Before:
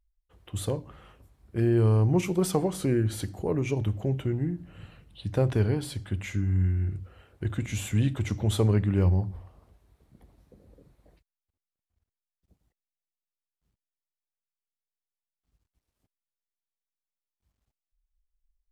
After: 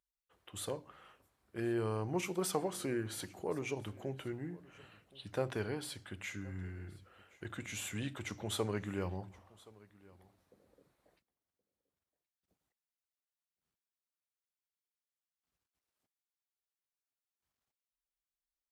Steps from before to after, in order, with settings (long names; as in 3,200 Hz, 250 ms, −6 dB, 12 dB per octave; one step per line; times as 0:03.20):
high-pass filter 570 Hz 6 dB per octave
parametric band 1,400 Hz +2.5 dB
single-tap delay 1,072 ms −23 dB
level −4.5 dB